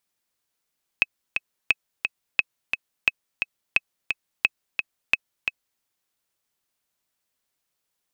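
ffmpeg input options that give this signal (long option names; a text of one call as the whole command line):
ffmpeg -f lavfi -i "aevalsrc='pow(10,(-4-6*gte(mod(t,2*60/175),60/175))/20)*sin(2*PI*2570*mod(t,60/175))*exp(-6.91*mod(t,60/175)/0.03)':duration=4.8:sample_rate=44100" out.wav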